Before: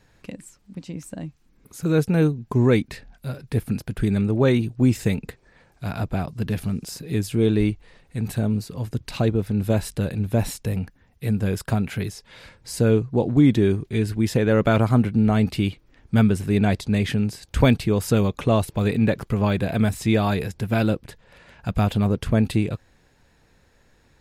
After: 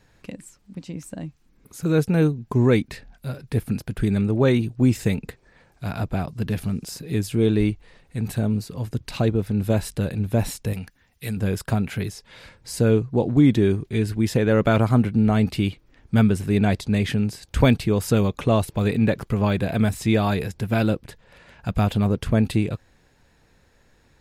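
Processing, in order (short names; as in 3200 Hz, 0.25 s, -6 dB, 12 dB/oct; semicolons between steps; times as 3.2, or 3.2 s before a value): 10.73–11.37 tilt shelf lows -6.5 dB, about 1300 Hz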